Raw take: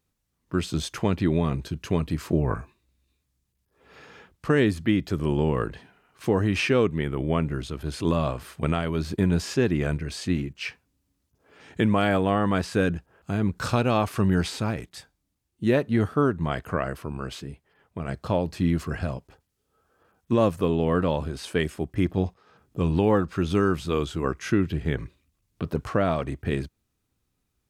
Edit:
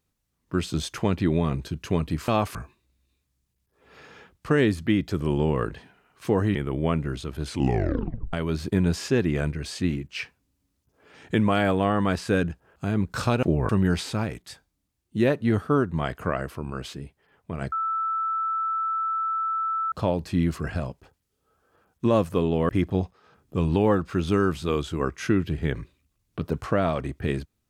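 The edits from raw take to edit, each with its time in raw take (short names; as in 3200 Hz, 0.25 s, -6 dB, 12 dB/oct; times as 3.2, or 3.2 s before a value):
2.28–2.54 swap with 13.89–14.16
6.54–7.01 cut
7.93 tape stop 0.86 s
18.19 add tone 1320 Hz -23.5 dBFS 2.20 s
20.96–21.92 cut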